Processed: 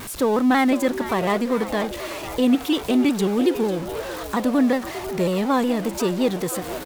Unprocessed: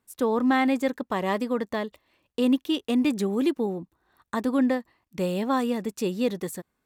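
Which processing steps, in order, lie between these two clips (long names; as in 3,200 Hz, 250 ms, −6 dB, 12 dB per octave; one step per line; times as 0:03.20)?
converter with a step at zero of −32 dBFS
echo with shifted repeats 497 ms, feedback 61%, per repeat +120 Hz, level −13 dB
pitch modulation by a square or saw wave saw down 5.5 Hz, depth 100 cents
level +3 dB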